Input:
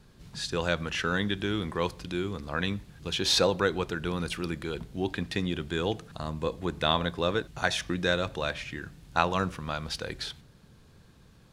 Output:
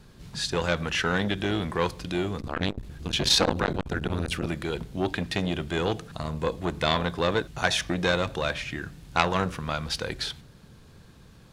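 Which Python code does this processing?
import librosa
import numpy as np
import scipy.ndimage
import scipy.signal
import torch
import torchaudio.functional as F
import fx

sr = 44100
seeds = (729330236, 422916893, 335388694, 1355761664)

y = fx.octave_divider(x, sr, octaves=1, level_db=3.0, at=(2.39, 4.47))
y = fx.transformer_sat(y, sr, knee_hz=1900.0)
y = y * 10.0 ** (5.0 / 20.0)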